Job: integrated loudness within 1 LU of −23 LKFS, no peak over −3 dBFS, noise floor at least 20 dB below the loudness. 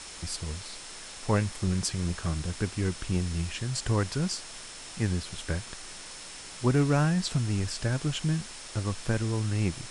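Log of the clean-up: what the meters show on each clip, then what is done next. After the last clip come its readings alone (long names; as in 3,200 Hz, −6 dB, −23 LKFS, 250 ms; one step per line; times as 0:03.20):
interfering tone 5,300 Hz; level of the tone −51 dBFS; background noise floor −44 dBFS; target noise floor −50 dBFS; integrated loudness −30.0 LKFS; sample peak −12.5 dBFS; target loudness −23.0 LKFS
→ notch filter 5,300 Hz, Q 30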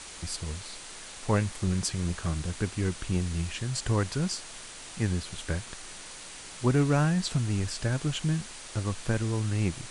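interfering tone none found; background noise floor −44 dBFS; target noise floor −50 dBFS
→ noise reduction from a noise print 6 dB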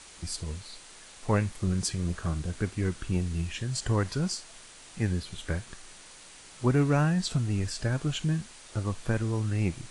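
background noise floor −50 dBFS; integrated loudness −30.0 LKFS; sample peak −12.5 dBFS; target loudness −23.0 LKFS
→ level +7 dB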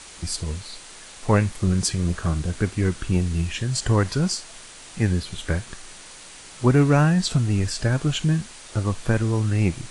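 integrated loudness −23.0 LKFS; sample peak −5.5 dBFS; background noise floor −43 dBFS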